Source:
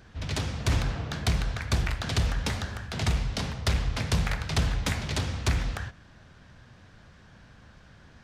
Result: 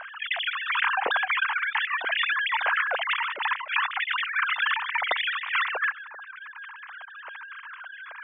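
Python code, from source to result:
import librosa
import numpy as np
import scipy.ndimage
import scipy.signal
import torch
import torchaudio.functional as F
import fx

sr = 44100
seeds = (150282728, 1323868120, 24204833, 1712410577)

y = fx.sine_speech(x, sr)
y = fx.spec_gate(y, sr, threshold_db=-25, keep='strong')
y = fx.over_compress(y, sr, threshold_db=-28.0, ratio=-0.5)
y = fx.air_absorb(y, sr, metres=200.0)
y = F.gain(torch.from_numpy(y), 5.0).numpy()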